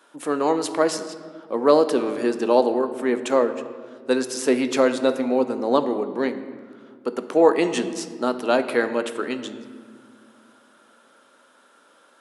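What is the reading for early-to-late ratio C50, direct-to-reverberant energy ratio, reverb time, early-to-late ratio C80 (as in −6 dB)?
11.5 dB, 9.0 dB, 1.9 s, 12.5 dB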